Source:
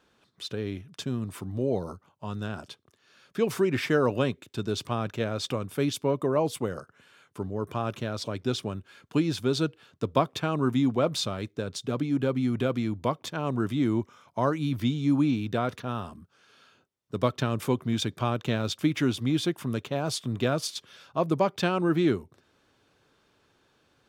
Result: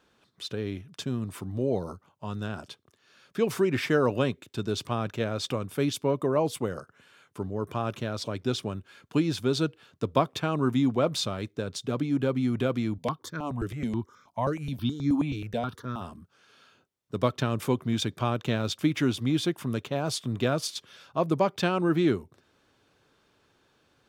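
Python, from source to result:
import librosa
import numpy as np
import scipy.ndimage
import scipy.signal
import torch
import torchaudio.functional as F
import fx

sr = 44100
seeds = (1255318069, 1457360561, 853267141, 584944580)

y = fx.phaser_held(x, sr, hz=9.4, low_hz=230.0, high_hz=2900.0, at=(12.97, 16.0), fade=0.02)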